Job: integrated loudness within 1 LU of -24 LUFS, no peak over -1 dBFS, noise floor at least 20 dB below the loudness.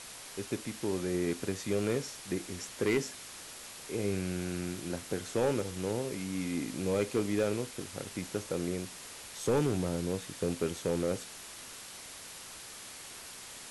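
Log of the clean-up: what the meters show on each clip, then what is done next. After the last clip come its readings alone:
clipped samples 0.5%; clipping level -22.0 dBFS; noise floor -47 dBFS; noise floor target -55 dBFS; loudness -35.0 LUFS; peak level -22.0 dBFS; loudness target -24.0 LUFS
-> clip repair -22 dBFS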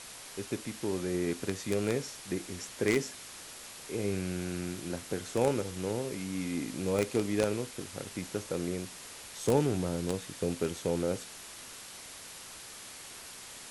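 clipped samples 0.0%; noise floor -47 dBFS; noise floor target -55 dBFS
-> noise print and reduce 8 dB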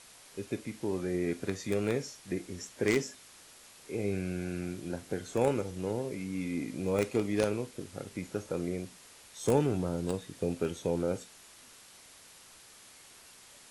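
noise floor -55 dBFS; loudness -33.5 LUFS; peak level -13.0 dBFS; loudness target -24.0 LUFS
-> trim +9.5 dB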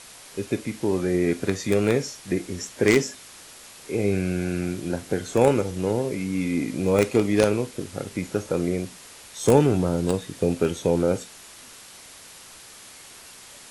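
loudness -24.0 LUFS; peak level -3.5 dBFS; noise floor -46 dBFS

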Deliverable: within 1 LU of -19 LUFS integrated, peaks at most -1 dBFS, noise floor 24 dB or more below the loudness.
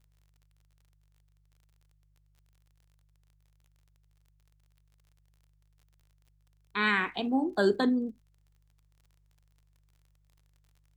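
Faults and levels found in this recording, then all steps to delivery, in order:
tick rate 40 per s; hum 50 Hz; highest harmonic 150 Hz; hum level -64 dBFS; loudness -28.5 LUFS; peak level -12.5 dBFS; loudness target -19.0 LUFS
-> de-click; de-hum 50 Hz, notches 3; trim +9.5 dB

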